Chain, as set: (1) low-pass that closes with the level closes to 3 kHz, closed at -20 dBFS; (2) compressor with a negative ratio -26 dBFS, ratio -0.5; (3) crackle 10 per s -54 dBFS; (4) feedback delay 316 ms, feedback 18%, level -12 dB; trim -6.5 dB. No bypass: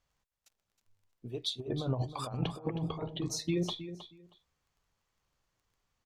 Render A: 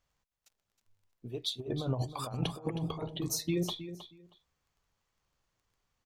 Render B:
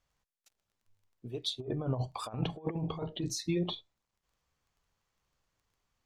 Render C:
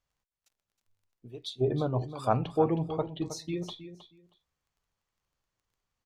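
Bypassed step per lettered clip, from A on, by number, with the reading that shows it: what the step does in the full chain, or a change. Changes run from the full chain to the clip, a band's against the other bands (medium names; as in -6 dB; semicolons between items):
1, 8 kHz band +3.5 dB; 4, momentary loudness spread change -6 LU; 2, crest factor change +4.0 dB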